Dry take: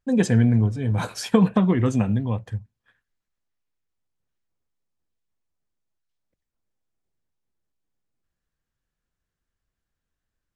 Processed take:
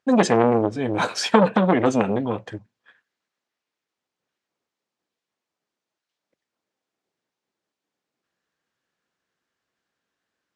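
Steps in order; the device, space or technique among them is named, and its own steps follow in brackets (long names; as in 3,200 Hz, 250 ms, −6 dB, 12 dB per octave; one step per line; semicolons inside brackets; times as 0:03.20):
public-address speaker with an overloaded transformer (saturating transformer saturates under 710 Hz; band-pass filter 280–5,900 Hz)
level +8.5 dB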